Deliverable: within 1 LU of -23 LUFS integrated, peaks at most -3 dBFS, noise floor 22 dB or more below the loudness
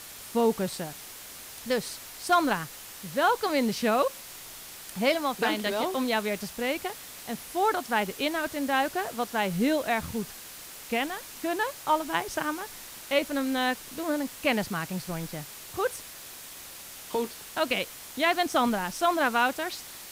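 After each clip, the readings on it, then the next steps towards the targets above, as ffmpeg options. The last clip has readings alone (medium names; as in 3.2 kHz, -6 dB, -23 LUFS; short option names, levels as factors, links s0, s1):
noise floor -44 dBFS; noise floor target -51 dBFS; loudness -28.5 LUFS; peak level -12.0 dBFS; loudness target -23.0 LUFS
-> -af "afftdn=nr=7:nf=-44"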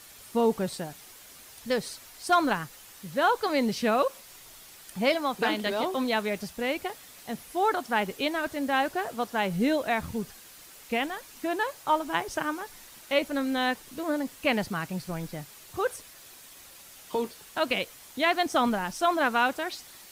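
noise floor -50 dBFS; noise floor target -51 dBFS
-> -af "afftdn=nr=6:nf=-50"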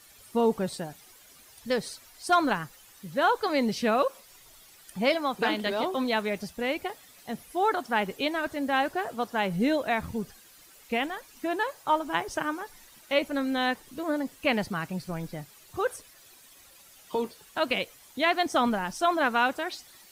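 noise floor -55 dBFS; loudness -28.5 LUFS; peak level -12.0 dBFS; loudness target -23.0 LUFS
-> -af "volume=1.88"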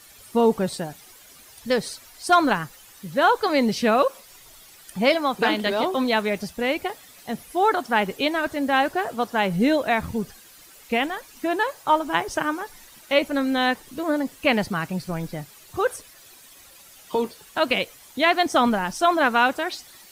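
loudness -23.0 LUFS; peak level -6.5 dBFS; noise floor -49 dBFS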